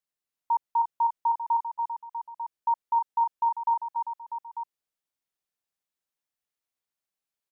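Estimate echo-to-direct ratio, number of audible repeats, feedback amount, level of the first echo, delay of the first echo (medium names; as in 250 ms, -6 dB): -3.5 dB, 3, no regular repeats, -5.0 dB, 286 ms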